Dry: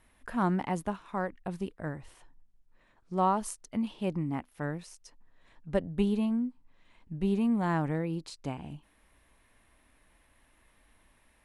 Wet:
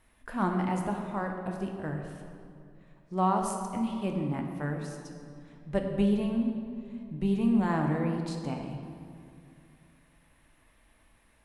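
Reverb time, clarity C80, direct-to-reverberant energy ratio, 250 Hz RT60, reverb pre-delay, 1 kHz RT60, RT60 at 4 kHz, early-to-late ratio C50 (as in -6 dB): 2.4 s, 5.0 dB, 2.0 dB, 3.0 s, 3 ms, 2.2 s, 1.4 s, 4.0 dB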